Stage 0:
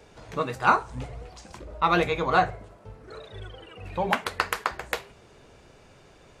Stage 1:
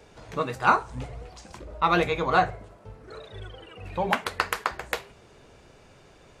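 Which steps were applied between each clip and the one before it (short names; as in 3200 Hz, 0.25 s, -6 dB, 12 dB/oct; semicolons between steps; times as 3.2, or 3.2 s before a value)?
nothing audible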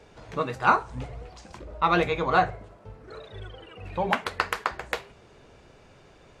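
high shelf 8700 Hz -10 dB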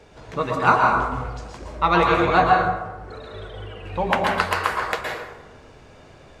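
plate-style reverb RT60 1.1 s, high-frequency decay 0.55×, pre-delay 0.105 s, DRR -0.5 dB; gain +3 dB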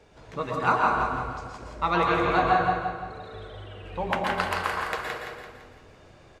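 feedback echo 0.169 s, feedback 46%, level -5 dB; gain -6.5 dB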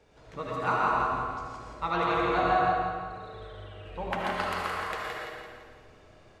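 digital reverb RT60 0.8 s, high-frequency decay 0.7×, pre-delay 35 ms, DRR 1 dB; gain -6 dB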